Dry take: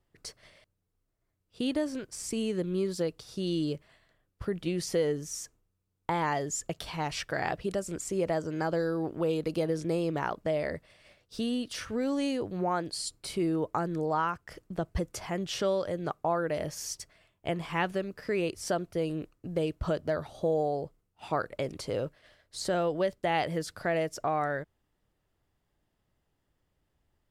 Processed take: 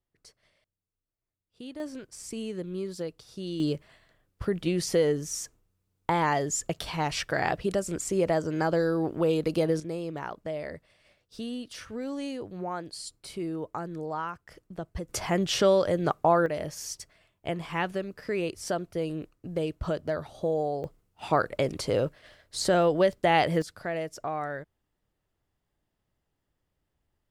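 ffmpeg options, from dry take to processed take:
ffmpeg -i in.wav -af "asetnsamples=nb_out_samples=441:pad=0,asendcmd='1.8 volume volume -4dB;3.6 volume volume 4dB;9.8 volume volume -4.5dB;15.09 volume volume 7dB;16.46 volume volume 0dB;20.84 volume volume 6dB;23.62 volume volume -3dB',volume=-11.5dB" out.wav

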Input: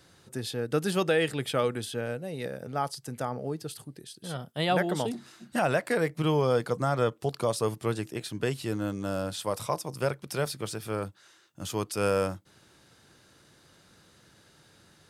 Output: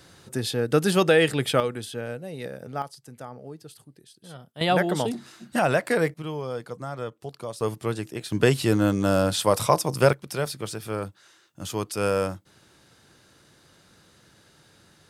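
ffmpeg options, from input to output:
ffmpeg -i in.wav -af "asetnsamples=nb_out_samples=441:pad=0,asendcmd='1.6 volume volume 0dB;2.82 volume volume -7dB;4.61 volume volume 4dB;6.14 volume volume -7dB;7.61 volume volume 1.5dB;8.32 volume volume 10dB;10.13 volume volume 2dB',volume=6.5dB" out.wav

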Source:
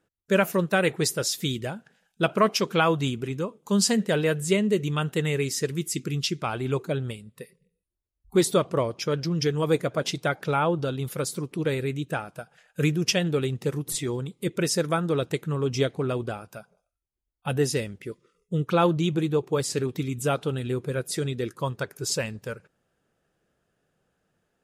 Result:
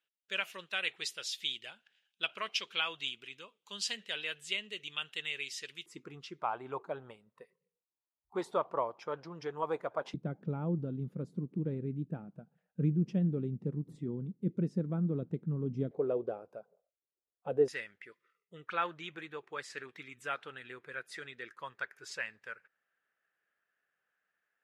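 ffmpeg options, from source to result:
ffmpeg -i in.wav -af "asetnsamples=nb_out_samples=441:pad=0,asendcmd='5.86 bandpass f 910;10.14 bandpass f 200;15.91 bandpass f 490;17.68 bandpass f 1800',bandpass=frequency=3000:width_type=q:width=2.7:csg=0" out.wav

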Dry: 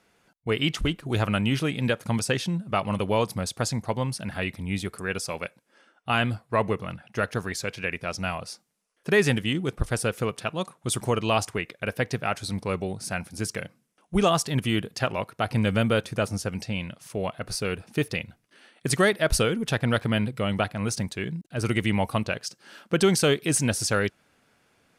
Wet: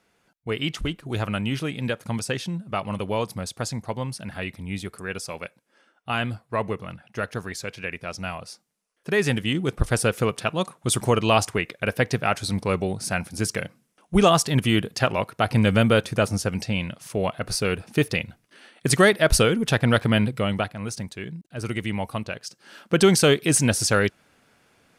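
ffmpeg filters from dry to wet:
ffmpeg -i in.wav -af "volume=12dB,afade=type=in:start_time=9.13:duration=0.75:silence=0.473151,afade=type=out:start_time=20.29:duration=0.47:silence=0.398107,afade=type=in:start_time=22.41:duration=0.62:silence=0.421697" out.wav

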